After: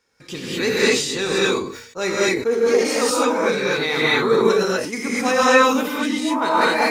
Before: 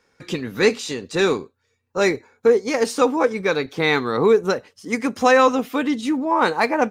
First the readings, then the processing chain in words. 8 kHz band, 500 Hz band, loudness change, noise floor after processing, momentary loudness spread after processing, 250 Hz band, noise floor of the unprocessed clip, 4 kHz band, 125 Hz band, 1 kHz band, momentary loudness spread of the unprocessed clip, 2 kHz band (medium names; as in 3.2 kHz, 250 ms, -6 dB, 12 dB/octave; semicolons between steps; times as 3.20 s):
+7.5 dB, +0.5 dB, +1.5 dB, -44 dBFS, 9 LU, 0.0 dB, -70 dBFS, +6.0 dB, -0.5 dB, +1.0 dB, 11 LU, +3.5 dB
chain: treble shelf 3 kHz +8 dB; gated-style reverb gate 270 ms rising, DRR -7.5 dB; decay stretcher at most 73 dB/s; trim -8 dB